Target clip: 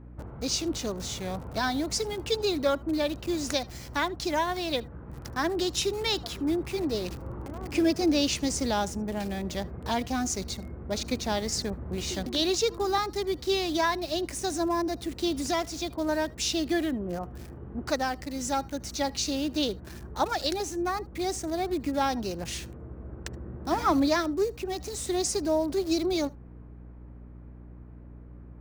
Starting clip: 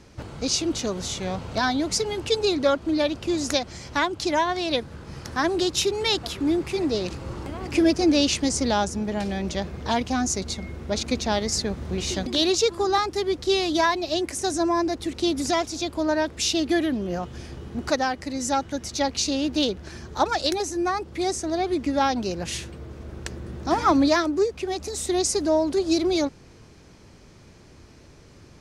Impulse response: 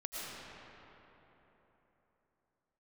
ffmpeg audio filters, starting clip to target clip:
-filter_complex "[0:a]acrossover=split=650|1700[s0][s1][s2];[s2]acrusher=bits=6:mix=0:aa=0.000001[s3];[s0][s1][s3]amix=inputs=3:normalize=0,aeval=exprs='val(0)+0.01*(sin(2*PI*60*n/s)+sin(2*PI*2*60*n/s)/2+sin(2*PI*3*60*n/s)/3+sin(2*PI*4*60*n/s)/4+sin(2*PI*5*60*n/s)/5)':c=same[s4];[1:a]atrim=start_sample=2205,atrim=end_sample=3528[s5];[s4][s5]afir=irnorm=-1:irlink=0"

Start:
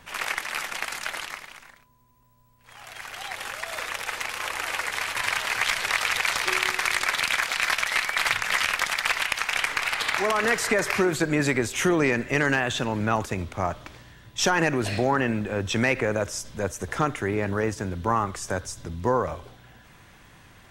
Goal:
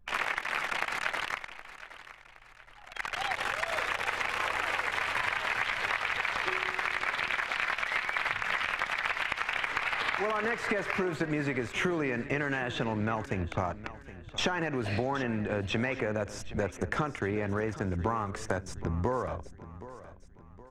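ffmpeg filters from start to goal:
-filter_complex "[0:a]anlmdn=1.58,acrossover=split=3100[s0][s1];[s1]acompressor=threshold=0.00562:ratio=4:attack=1:release=60[s2];[s0][s2]amix=inputs=2:normalize=0,highshelf=f=11000:g=-7.5,acompressor=threshold=0.0224:ratio=10,asplit=2[s3][s4];[s4]aecho=0:1:769|1538|2307|3076:0.168|0.0705|0.0296|0.0124[s5];[s3][s5]amix=inputs=2:normalize=0,volume=2"

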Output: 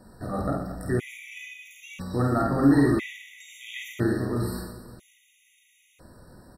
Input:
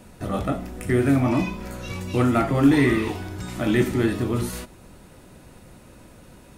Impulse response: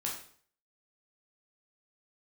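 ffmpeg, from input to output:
-af "aecho=1:1:50|120|218|355.2|547.3:0.631|0.398|0.251|0.158|0.1,afftfilt=real='re*gt(sin(2*PI*0.5*pts/sr)*(1-2*mod(floor(b*sr/1024/1900),2)),0)':imag='im*gt(sin(2*PI*0.5*pts/sr)*(1-2*mod(floor(b*sr/1024/1900),2)),0)':win_size=1024:overlap=0.75,volume=0.596"

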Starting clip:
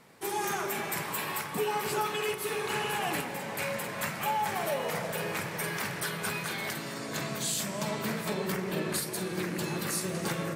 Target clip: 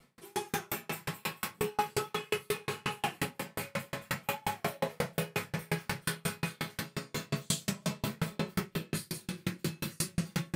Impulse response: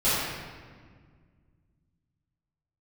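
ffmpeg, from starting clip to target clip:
-filter_complex "[0:a]asetnsamples=n=441:p=0,asendcmd='8.57 equalizer g -12',equalizer=f=690:t=o:w=1.7:g=-5[s0];[1:a]atrim=start_sample=2205,atrim=end_sample=4410[s1];[s0][s1]afir=irnorm=-1:irlink=0,aeval=exprs='val(0)*pow(10,-40*if(lt(mod(5.6*n/s,1),2*abs(5.6)/1000),1-mod(5.6*n/s,1)/(2*abs(5.6)/1000),(mod(5.6*n/s,1)-2*abs(5.6)/1000)/(1-2*abs(5.6)/1000))/20)':c=same,volume=0.531"

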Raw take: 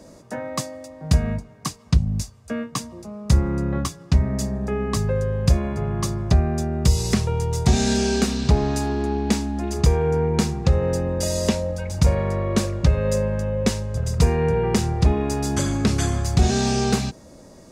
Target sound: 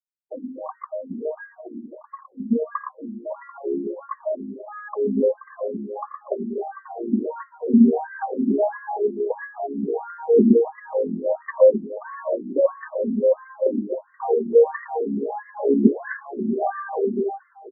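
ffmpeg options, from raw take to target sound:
-filter_complex "[0:a]equalizer=f=4700:t=o:w=1.2:g=9.5,bandreject=f=1300:w=7.8,asplit=2[s0][s1];[s1]aecho=0:1:479|958|1437:0.335|0.0636|0.0121[s2];[s0][s2]amix=inputs=2:normalize=0,afftdn=nr=23:nf=-27,asplit=2[s3][s4];[s4]aecho=0:1:55|85|114|242|261:0.106|0.282|0.562|0.158|0.596[s5];[s3][s5]amix=inputs=2:normalize=0,acrusher=bits=8:mix=0:aa=0.000001,aphaser=in_gain=1:out_gain=1:delay=4.4:decay=0.63:speed=0.19:type=triangular,bandreject=f=50:t=h:w=6,bandreject=f=100:t=h:w=6,bandreject=f=150:t=h:w=6,bandreject=f=200:t=h:w=6,bandreject=f=250:t=h:w=6,bandreject=f=300:t=h:w=6,bandreject=f=350:t=h:w=6,afftfilt=real='re*between(b*sr/1024,260*pow(1500/260,0.5+0.5*sin(2*PI*1.5*pts/sr))/1.41,260*pow(1500/260,0.5+0.5*sin(2*PI*1.5*pts/sr))*1.41)':imag='im*between(b*sr/1024,260*pow(1500/260,0.5+0.5*sin(2*PI*1.5*pts/sr))/1.41,260*pow(1500/260,0.5+0.5*sin(2*PI*1.5*pts/sr))*1.41)':win_size=1024:overlap=0.75,volume=1.78"

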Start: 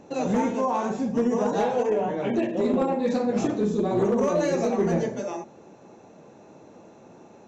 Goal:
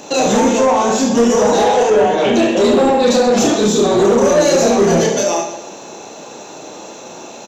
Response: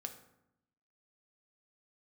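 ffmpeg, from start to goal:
-filter_complex "[0:a]acrossover=split=720[s0][s1];[s1]alimiter=level_in=2.51:limit=0.0631:level=0:latency=1:release=109,volume=0.398[s2];[s0][s2]amix=inputs=2:normalize=0,aecho=1:1:30|72|130.8|213.1|328.4:0.631|0.398|0.251|0.158|0.1,aexciter=amount=2.6:drive=7.3:freq=2900,asplit=2[s3][s4];[s4]highpass=f=720:p=1,volume=7.94,asoftclip=type=tanh:threshold=0.398[s5];[s3][s5]amix=inputs=2:normalize=0,lowpass=f=6700:p=1,volume=0.501,volume=1.88"

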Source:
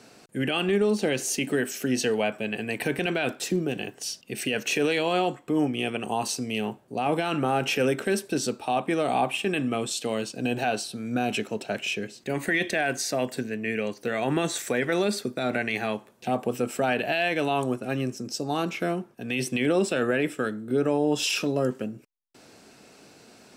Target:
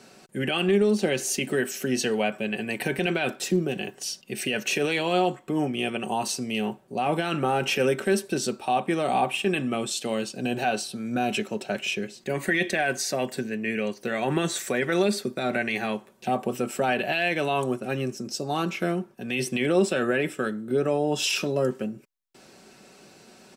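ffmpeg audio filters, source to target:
-af "aecho=1:1:5.3:0.41"

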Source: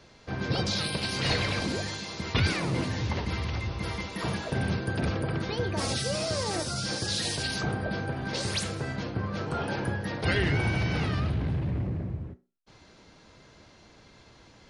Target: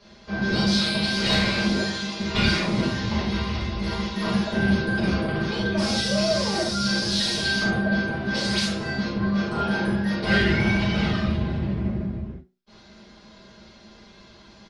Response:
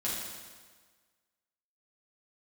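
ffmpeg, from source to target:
-filter_complex "[0:a]highshelf=f=6500:t=q:w=1.5:g=-6.5,aeval=exprs='0.251*(cos(1*acos(clip(val(0)/0.251,-1,1)))-cos(1*PI/2))+0.02*(cos(4*acos(clip(val(0)/0.251,-1,1)))-cos(4*PI/2))':c=same,aecho=1:1:5:0.57[s0];[1:a]atrim=start_sample=2205,atrim=end_sample=4410[s1];[s0][s1]afir=irnorm=-1:irlink=0"

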